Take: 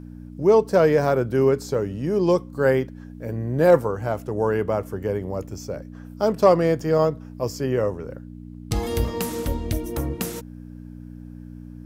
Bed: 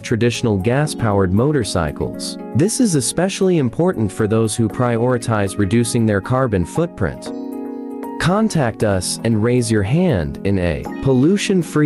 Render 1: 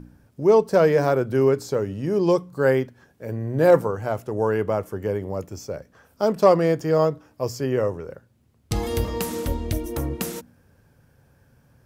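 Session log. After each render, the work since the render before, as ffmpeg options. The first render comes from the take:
ffmpeg -i in.wav -af "bandreject=frequency=60:width_type=h:width=4,bandreject=frequency=120:width_type=h:width=4,bandreject=frequency=180:width_type=h:width=4,bandreject=frequency=240:width_type=h:width=4,bandreject=frequency=300:width_type=h:width=4" out.wav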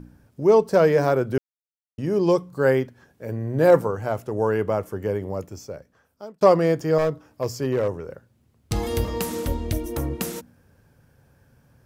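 ffmpeg -i in.wav -filter_complex "[0:a]asettb=1/sr,asplit=3[link_01][link_02][link_03];[link_01]atrim=end=6.984[link_04];[link_02]atrim=start=6.98:end=8.86,asetpts=PTS-STARTPTS,afade=type=in:duration=0.004:curve=qsin,afade=type=out:start_time=1.876:duration=0.004:curve=qsin,asoftclip=type=hard:threshold=-16.5dB[link_05];[link_03]atrim=start=8.856[link_06];[link_04][link_05]acrossfade=duration=0.004:curve1=hsin:curve2=qsin[link_07];[link_07][link_06]acrossfade=duration=0.004:curve1=qsin:curve2=hsin,asplit=4[link_08][link_09][link_10][link_11];[link_08]atrim=end=1.38,asetpts=PTS-STARTPTS,afade=type=out:start_time=1.376:duration=0.004:curve=hsin[link_12];[link_09]atrim=start=1.38:end=1.98,asetpts=PTS-STARTPTS,volume=0[link_13];[link_10]atrim=start=1.98:end=6.41,asetpts=PTS-STARTPTS,afade=type=in:duration=0.004:curve=hsin,afade=type=out:start_time=3.32:duration=1.11[link_14];[link_11]atrim=start=6.41,asetpts=PTS-STARTPTS,afade=type=in:duration=0.004:curve=hsin[link_15];[link_12][link_13][link_14][link_15]concat=n=4:v=0:a=1" out.wav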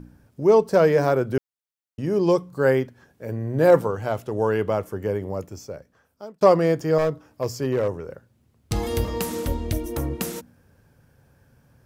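ffmpeg -i in.wav -filter_complex "[0:a]asettb=1/sr,asplit=3[link_01][link_02][link_03];[link_01]atrim=end=3.774[link_04];[link_02]atrim=start=3.77:end=4.83,asetpts=PTS-STARTPTS,afade=type=in:duration=0.004:curve=qsin,afade=type=out:start_time=1.056:duration=0.004:curve=qsin,equalizer=frequency=3400:width_type=o:width=0.76:gain=6.5[link_05];[link_03]atrim=start=4.826[link_06];[link_04][link_05]acrossfade=duration=0.004:curve1=hsin:curve2=qsin[link_07];[link_07][link_06]acrossfade=duration=0.004:curve1=qsin:curve2=hsin" out.wav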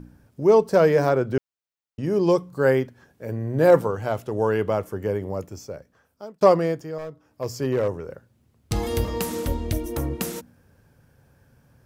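ffmpeg -i in.wav -filter_complex "[0:a]asettb=1/sr,asplit=3[link_01][link_02][link_03];[link_01]atrim=end=1.094[link_04];[link_02]atrim=start=1.09:end=2.03,asetpts=PTS-STARTPTS,afade=type=in:duration=0.004:curve=qsin,afade=type=out:start_time=0.936:duration=0.004:curve=qsin,equalizer=frequency=12000:width=1.5:gain=-14.5[link_05];[link_03]atrim=start=2.026[link_06];[link_04][link_05]acrossfade=duration=0.004:curve1=hsin:curve2=qsin[link_07];[link_07][link_06]acrossfade=duration=0.004:curve1=qsin:curve2=hsin,asplit=3[link_08][link_09][link_10];[link_08]atrim=end=6.92,asetpts=PTS-STARTPTS,afade=type=out:start_time=6.47:duration=0.45:silence=0.237137[link_11];[link_09]atrim=start=6.92:end=7.16,asetpts=PTS-STARTPTS,volume=-12.5dB[link_12];[link_10]atrim=start=7.16,asetpts=PTS-STARTPTS,afade=type=in:duration=0.45:silence=0.237137[link_13];[link_11][link_12][link_13]concat=n=3:v=0:a=1" out.wav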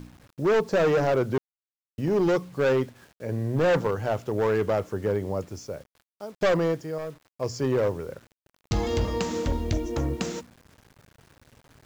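ffmpeg -i in.wav -af "aresample=16000,asoftclip=type=hard:threshold=-18.5dB,aresample=44100,acrusher=bits=8:mix=0:aa=0.000001" out.wav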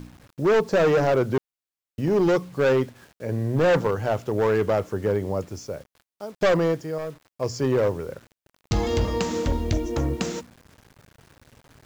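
ffmpeg -i in.wav -af "volume=2.5dB" out.wav

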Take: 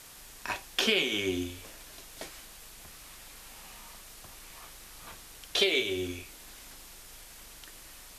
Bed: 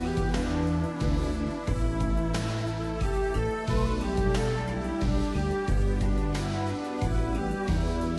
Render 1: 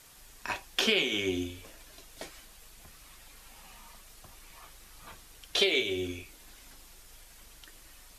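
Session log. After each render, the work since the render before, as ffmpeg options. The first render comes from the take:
ffmpeg -i in.wav -af "afftdn=noise_reduction=6:noise_floor=-50" out.wav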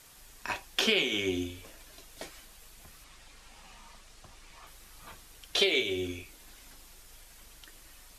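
ffmpeg -i in.wav -filter_complex "[0:a]asettb=1/sr,asplit=3[link_01][link_02][link_03];[link_01]atrim=end=3.044[link_04];[link_02]atrim=start=3.04:end=4.67,asetpts=PTS-STARTPTS,afade=type=in:duration=0.004:curve=qsin,afade=type=out:start_time=1.626:duration=0.004:curve=qsin,lowpass=8100[link_05];[link_03]atrim=start=4.666[link_06];[link_04][link_05]acrossfade=duration=0.004:curve1=hsin:curve2=qsin[link_07];[link_07][link_06]acrossfade=duration=0.004:curve1=qsin:curve2=hsin" out.wav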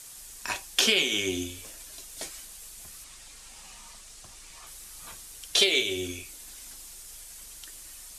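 ffmpeg -i in.wav -af "equalizer=frequency=8700:width_type=o:width=1.8:gain=13.5" out.wav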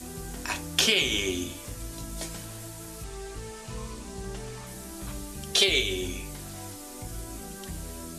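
ffmpeg -i in.wav -i bed.wav -filter_complex "[1:a]volume=-12.5dB[link_01];[0:a][link_01]amix=inputs=2:normalize=0" out.wav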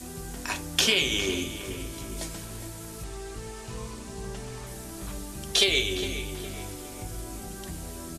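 ffmpeg -i in.wav -filter_complex "[0:a]asplit=2[link_01][link_02];[link_02]adelay=411,lowpass=frequency=2400:poles=1,volume=-9.5dB,asplit=2[link_03][link_04];[link_04]adelay=411,lowpass=frequency=2400:poles=1,volume=0.52,asplit=2[link_05][link_06];[link_06]adelay=411,lowpass=frequency=2400:poles=1,volume=0.52,asplit=2[link_07][link_08];[link_08]adelay=411,lowpass=frequency=2400:poles=1,volume=0.52,asplit=2[link_09][link_10];[link_10]adelay=411,lowpass=frequency=2400:poles=1,volume=0.52,asplit=2[link_11][link_12];[link_12]adelay=411,lowpass=frequency=2400:poles=1,volume=0.52[link_13];[link_01][link_03][link_05][link_07][link_09][link_11][link_13]amix=inputs=7:normalize=0" out.wav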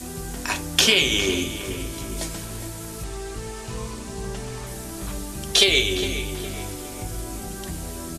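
ffmpeg -i in.wav -af "volume=5.5dB,alimiter=limit=-1dB:level=0:latency=1" out.wav

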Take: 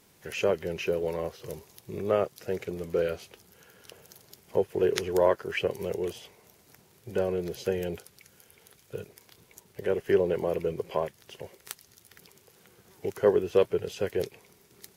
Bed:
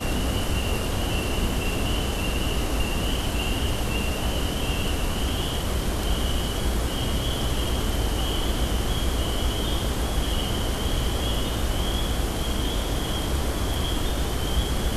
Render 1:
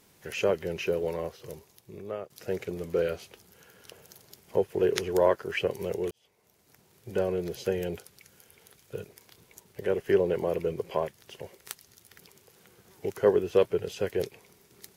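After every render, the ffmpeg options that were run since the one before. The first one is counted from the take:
ffmpeg -i in.wav -filter_complex "[0:a]asplit=3[link_01][link_02][link_03];[link_01]atrim=end=2.3,asetpts=PTS-STARTPTS,afade=type=out:start_time=1.02:duration=1.28:silence=0.188365[link_04];[link_02]atrim=start=2.3:end=6.11,asetpts=PTS-STARTPTS,afade=type=in:duration=0.004:curve=hsin:silence=0.188365,afade=type=out:start_time=3.806:duration=0.004:curve=hsin[link_05];[link_03]atrim=start=6.11,asetpts=PTS-STARTPTS,afade=type=in:duration=1[link_06];[link_04][link_05][link_06]concat=n=3:v=0:a=1" out.wav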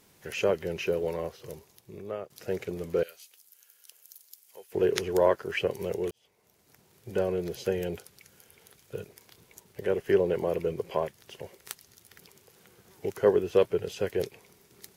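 ffmpeg -i in.wav -filter_complex "[0:a]asettb=1/sr,asplit=3[link_01][link_02][link_03];[link_01]atrim=end=3.034[link_04];[link_02]atrim=start=3.03:end=4.72,asetpts=PTS-STARTPTS,afade=type=in:duration=0.004:curve=qsin,afade=type=out:start_time=1.686:duration=0.004:curve=qsin,aderivative[link_05];[link_03]atrim=start=4.716[link_06];[link_04][link_05]acrossfade=duration=0.004:curve1=hsin:curve2=qsin[link_07];[link_07][link_06]acrossfade=duration=0.004:curve1=qsin:curve2=hsin" out.wav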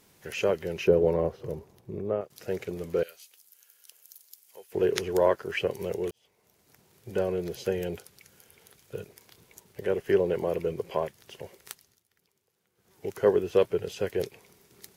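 ffmpeg -i in.wav -filter_complex "[0:a]asettb=1/sr,asplit=3[link_01][link_02][link_03];[link_01]atrim=end=0.874[link_04];[link_02]atrim=start=0.87:end=2.21,asetpts=PTS-STARTPTS,afade=type=in:duration=0.004:curve=qsin,afade=type=out:start_time=1.336:duration=0.004:curve=qsin,tiltshelf=frequency=1500:gain=9[link_05];[link_03]atrim=start=2.206[link_06];[link_04][link_05]acrossfade=duration=0.004:curve1=hsin:curve2=qsin[link_07];[link_07][link_06]acrossfade=duration=0.004:curve1=qsin:curve2=hsin,asplit=3[link_08][link_09][link_10];[link_08]atrim=end=12.03,asetpts=PTS-STARTPTS,afade=type=out:start_time=11.59:duration=0.44:silence=0.125893[link_11];[link_09]atrim=start=12.03:end=12.74,asetpts=PTS-STARTPTS,volume=-18dB[link_12];[link_10]atrim=start=12.74,asetpts=PTS-STARTPTS,afade=type=in:duration=0.44:silence=0.125893[link_13];[link_11][link_12][link_13]concat=n=3:v=0:a=1" out.wav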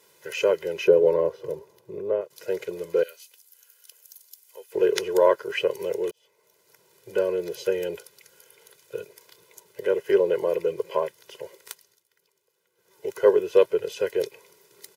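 ffmpeg -i in.wav -af "highpass=240,aecho=1:1:2:0.97" out.wav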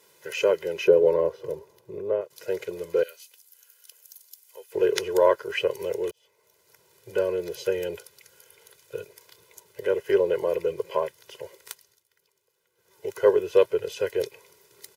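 ffmpeg -i in.wav -af "asubboost=boost=4:cutoff=92" out.wav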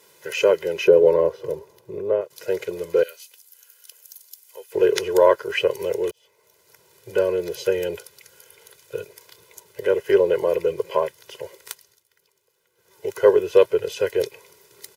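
ffmpeg -i in.wav -af "volume=4.5dB,alimiter=limit=-3dB:level=0:latency=1" out.wav

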